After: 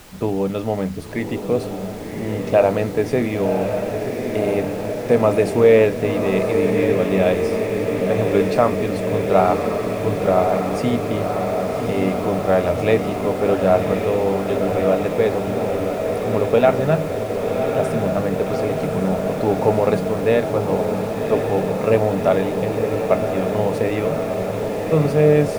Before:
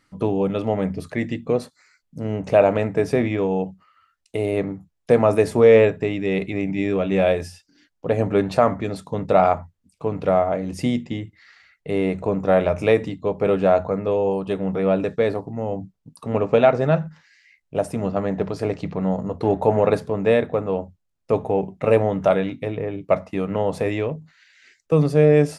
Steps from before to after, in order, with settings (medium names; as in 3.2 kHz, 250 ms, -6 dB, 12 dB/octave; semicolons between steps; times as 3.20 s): added noise pink -43 dBFS; echo that smears into a reverb 1095 ms, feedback 79%, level -5.5 dB